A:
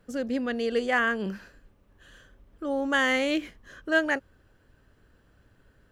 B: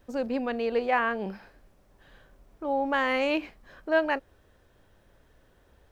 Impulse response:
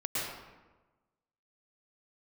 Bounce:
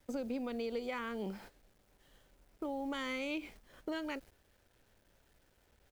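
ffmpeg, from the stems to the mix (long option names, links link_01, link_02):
-filter_complex "[0:a]highpass=frequency=470:poles=1,volume=-10dB[link_01];[1:a]acrossover=split=230|3000[link_02][link_03][link_04];[link_03]acompressor=threshold=-33dB:ratio=4[link_05];[link_02][link_05][link_04]amix=inputs=3:normalize=0,acrusher=bits=9:mix=0:aa=0.000001,adelay=0.8,volume=0dB[link_06];[link_01][link_06]amix=inputs=2:normalize=0,agate=range=-10dB:threshold=-50dB:ratio=16:detection=peak,equalizer=frequency=1100:width_type=o:width=0.26:gain=-6,acompressor=threshold=-38dB:ratio=2.5"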